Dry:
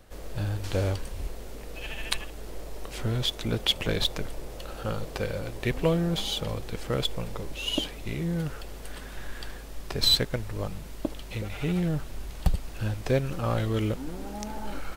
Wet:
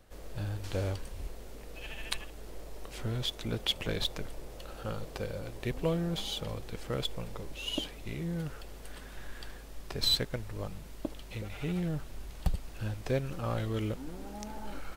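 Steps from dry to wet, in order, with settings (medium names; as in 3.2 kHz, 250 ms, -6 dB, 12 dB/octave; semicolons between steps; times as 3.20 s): 5.09–5.88 s: dynamic bell 2 kHz, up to -4 dB, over -42 dBFS, Q 0.95; trim -6 dB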